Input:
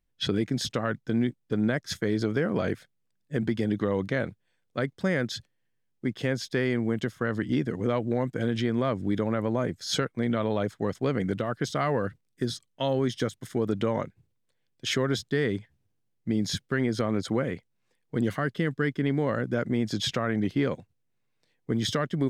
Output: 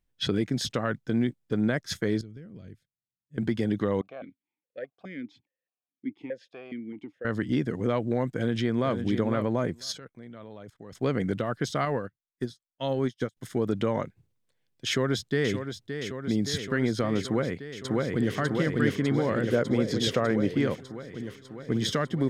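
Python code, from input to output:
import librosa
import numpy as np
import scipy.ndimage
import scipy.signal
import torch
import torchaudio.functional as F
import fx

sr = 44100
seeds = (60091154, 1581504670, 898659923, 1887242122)

y = fx.tone_stack(x, sr, knobs='10-0-1', at=(2.21, 3.38))
y = fx.vowel_held(y, sr, hz=4.8, at=(4.01, 7.25))
y = fx.echo_throw(y, sr, start_s=8.29, length_s=0.65, ms=500, feedback_pct=10, wet_db=-8.0)
y = fx.level_steps(y, sr, step_db=22, at=(9.91, 10.92), fade=0.02)
y = fx.upward_expand(y, sr, threshold_db=-45.0, expansion=2.5, at=(11.85, 13.37))
y = fx.echo_throw(y, sr, start_s=14.87, length_s=0.67, ms=570, feedback_pct=80, wet_db=-8.5)
y = fx.echo_throw(y, sr, start_s=17.24, length_s=1.12, ms=600, feedback_pct=75, wet_db=-0.5)
y = fx.peak_eq(y, sr, hz=490.0, db=6.0, octaves=0.77, at=(19.48, 20.54))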